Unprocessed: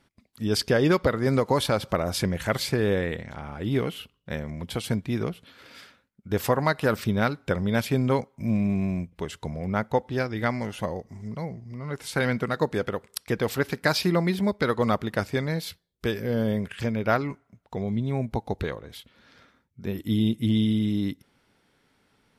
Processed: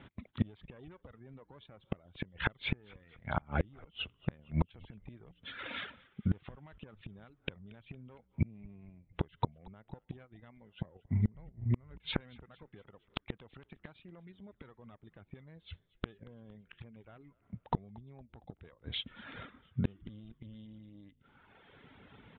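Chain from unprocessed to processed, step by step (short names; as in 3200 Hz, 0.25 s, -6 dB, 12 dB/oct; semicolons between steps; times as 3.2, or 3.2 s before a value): one diode to ground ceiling -22 dBFS; HPF 56 Hz 12 dB/oct; reverb removal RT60 0.83 s; steep low-pass 3700 Hz 96 dB/oct; low shelf 150 Hz +7.5 dB; 1.88–4.39 compressor 16:1, threshold -28 dBFS, peak gain reduction 11 dB; limiter -18.5 dBFS, peak gain reduction 9.5 dB; flipped gate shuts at -27 dBFS, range -35 dB; frequency-shifting echo 0.23 s, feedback 57%, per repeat -64 Hz, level -23.5 dB; gain +9.5 dB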